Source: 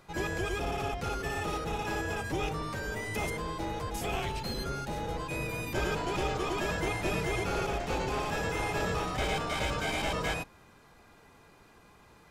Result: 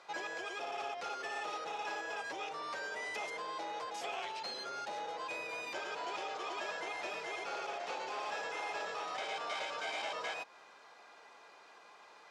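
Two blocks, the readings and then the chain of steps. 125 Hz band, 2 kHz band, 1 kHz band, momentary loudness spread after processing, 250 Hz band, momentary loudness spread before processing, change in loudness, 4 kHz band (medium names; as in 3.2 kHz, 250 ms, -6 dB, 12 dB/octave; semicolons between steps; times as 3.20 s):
-33.0 dB, -5.0 dB, -4.5 dB, 19 LU, -18.5 dB, 4 LU, -7.0 dB, -5.0 dB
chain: compression, threshold -37 dBFS, peak gain reduction 10 dB; Chebyshev band-pass 630–5500 Hz, order 2; trim +3 dB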